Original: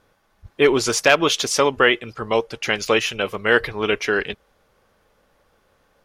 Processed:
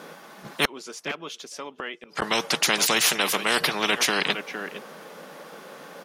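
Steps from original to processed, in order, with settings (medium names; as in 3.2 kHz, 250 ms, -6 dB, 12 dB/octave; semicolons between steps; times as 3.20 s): elliptic high-pass 160 Hz, stop band 40 dB; 0.65–2.22 s: inverted gate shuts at -21 dBFS, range -37 dB; 3.04–3.59 s: tone controls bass -8 dB, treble +4 dB; echo from a far wall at 79 m, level -26 dB; spectrum-flattening compressor 4:1; trim -2 dB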